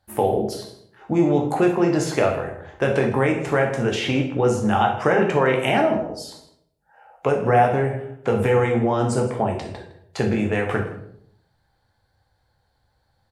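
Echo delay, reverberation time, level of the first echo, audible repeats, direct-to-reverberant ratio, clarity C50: 160 ms, 0.70 s, −17.0 dB, 1, 1.0 dB, 6.5 dB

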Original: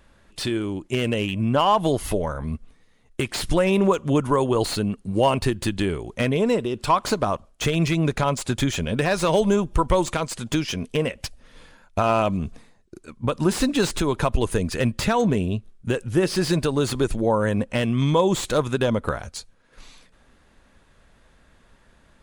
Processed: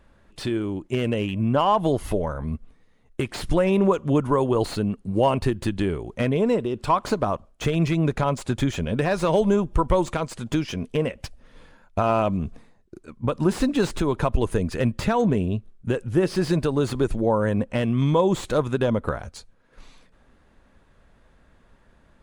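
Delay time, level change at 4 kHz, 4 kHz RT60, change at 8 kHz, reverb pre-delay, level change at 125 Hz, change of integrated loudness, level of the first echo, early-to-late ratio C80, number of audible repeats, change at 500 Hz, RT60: no echo audible, −6.0 dB, no reverb audible, −8.0 dB, no reverb audible, 0.0 dB, −1.0 dB, no echo audible, no reverb audible, no echo audible, −0.5 dB, no reverb audible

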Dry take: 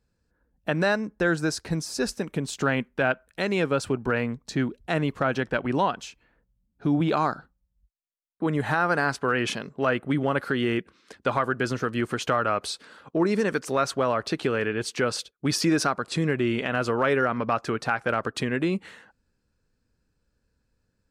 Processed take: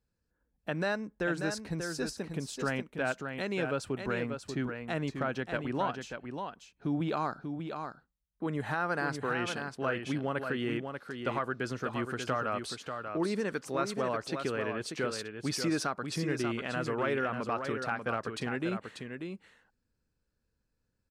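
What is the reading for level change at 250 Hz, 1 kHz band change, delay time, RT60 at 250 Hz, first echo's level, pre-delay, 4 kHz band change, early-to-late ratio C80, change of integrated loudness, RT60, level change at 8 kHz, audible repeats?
−7.5 dB, −7.5 dB, 589 ms, no reverb audible, −6.5 dB, no reverb audible, −7.5 dB, no reverb audible, −8.0 dB, no reverb audible, −7.5 dB, 1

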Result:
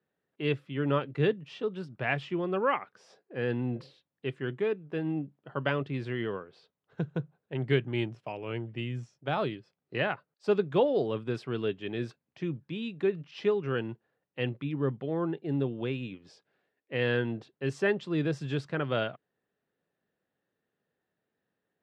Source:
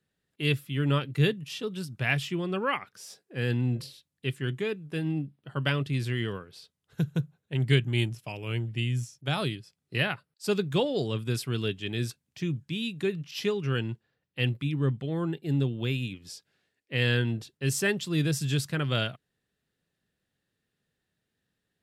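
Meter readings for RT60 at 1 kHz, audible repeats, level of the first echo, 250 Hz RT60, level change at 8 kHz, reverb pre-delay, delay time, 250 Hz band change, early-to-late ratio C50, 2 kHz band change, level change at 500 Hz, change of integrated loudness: no reverb audible, no echo audible, no echo audible, no reverb audible, below −20 dB, no reverb audible, no echo audible, −2.0 dB, no reverb audible, −3.5 dB, +2.5 dB, −2.5 dB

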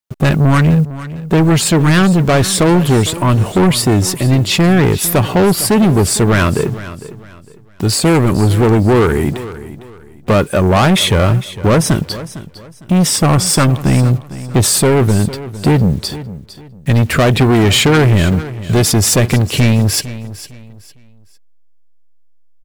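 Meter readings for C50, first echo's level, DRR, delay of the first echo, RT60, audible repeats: no reverb audible, −15.5 dB, no reverb audible, 455 ms, no reverb audible, 2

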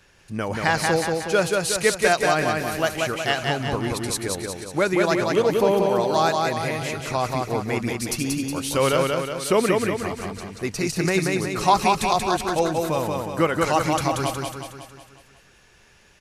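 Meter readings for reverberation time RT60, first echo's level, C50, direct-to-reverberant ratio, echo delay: no reverb audible, −3.0 dB, no reverb audible, no reverb audible, 183 ms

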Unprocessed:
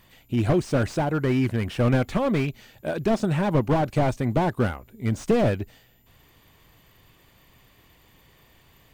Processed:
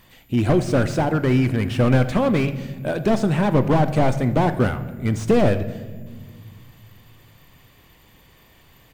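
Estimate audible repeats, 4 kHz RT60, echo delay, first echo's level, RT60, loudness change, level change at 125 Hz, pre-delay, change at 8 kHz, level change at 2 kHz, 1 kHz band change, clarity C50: 1, 1.0 s, 82 ms, −18.5 dB, 1.6 s, +4.0 dB, +4.5 dB, 4 ms, +3.5 dB, +4.0 dB, +4.0 dB, 12.5 dB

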